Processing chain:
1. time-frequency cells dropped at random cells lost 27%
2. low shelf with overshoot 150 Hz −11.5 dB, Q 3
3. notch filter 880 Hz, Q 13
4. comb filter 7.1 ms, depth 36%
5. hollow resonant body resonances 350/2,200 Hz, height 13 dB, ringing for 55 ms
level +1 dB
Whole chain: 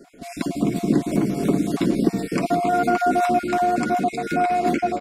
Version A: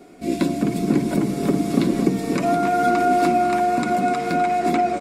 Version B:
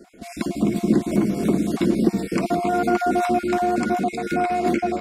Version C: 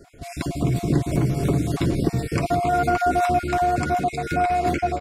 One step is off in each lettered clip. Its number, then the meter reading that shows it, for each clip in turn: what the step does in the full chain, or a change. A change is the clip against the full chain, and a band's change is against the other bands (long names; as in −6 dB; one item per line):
1, change in integrated loudness +1.5 LU
4, 1 kHz band −2.0 dB
2, 125 Hz band +7.0 dB